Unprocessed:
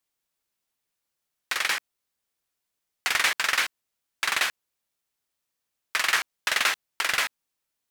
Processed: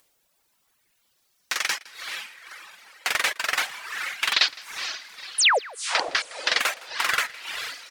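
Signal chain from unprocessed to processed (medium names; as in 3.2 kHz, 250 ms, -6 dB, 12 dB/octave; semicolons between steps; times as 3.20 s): 4.33–6.60 s: LFO low-pass square 3.3 Hz 330–4800 Hz; 5.38–5.59 s: painted sound fall 400–11000 Hz -20 dBFS; echo that smears into a reverb 472 ms, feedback 49%, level -6 dB; upward compressor, threshold -52 dBFS; reverb removal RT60 1.6 s; delay 162 ms -21.5 dB; sweeping bell 0.31 Hz 530–6000 Hz +6 dB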